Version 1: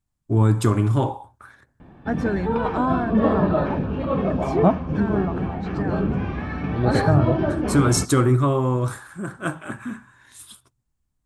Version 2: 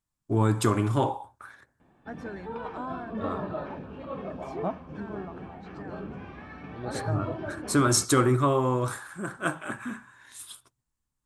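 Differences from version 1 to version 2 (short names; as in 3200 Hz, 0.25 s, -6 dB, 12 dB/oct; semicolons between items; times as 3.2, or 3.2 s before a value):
second voice -12.0 dB; background -11.0 dB; master: add low shelf 240 Hz -9.5 dB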